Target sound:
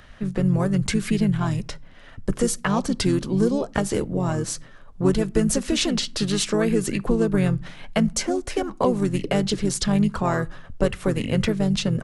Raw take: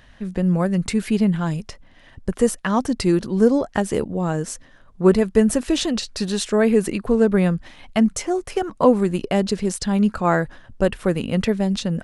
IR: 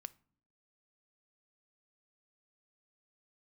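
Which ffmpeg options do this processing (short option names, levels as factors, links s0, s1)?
-filter_complex "[0:a]acrossover=split=140|3000[s0][s1][s2];[s1]acompressor=threshold=0.0631:ratio=2.5[s3];[s0][s3][s2]amix=inputs=3:normalize=0,asplit=2[s4][s5];[s5]asetrate=33038,aresample=44100,atempo=1.33484,volume=0.562[s6];[s4][s6]amix=inputs=2:normalize=0,asplit=2[s7][s8];[1:a]atrim=start_sample=2205[s9];[s8][s9]afir=irnorm=-1:irlink=0,volume=2.11[s10];[s7][s10]amix=inputs=2:normalize=0,volume=0.531"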